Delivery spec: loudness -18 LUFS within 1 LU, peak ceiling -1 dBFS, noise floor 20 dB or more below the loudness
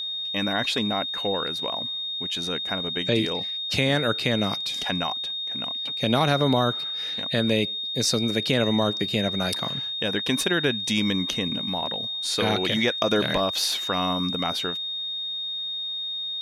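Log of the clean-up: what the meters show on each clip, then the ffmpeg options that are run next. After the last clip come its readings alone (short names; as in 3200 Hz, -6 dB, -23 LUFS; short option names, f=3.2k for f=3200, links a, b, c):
steady tone 3700 Hz; tone level -28 dBFS; loudness -24.5 LUFS; peak -6.5 dBFS; loudness target -18.0 LUFS
-> -af "bandreject=f=3.7k:w=30"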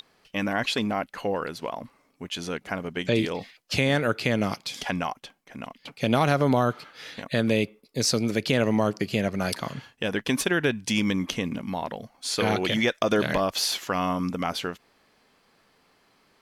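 steady tone none; loudness -26.5 LUFS; peak -6.0 dBFS; loudness target -18.0 LUFS
-> -af "volume=8.5dB,alimiter=limit=-1dB:level=0:latency=1"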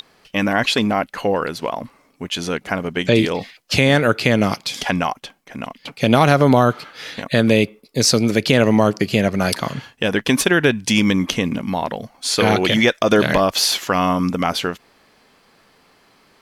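loudness -18.0 LUFS; peak -1.0 dBFS; noise floor -56 dBFS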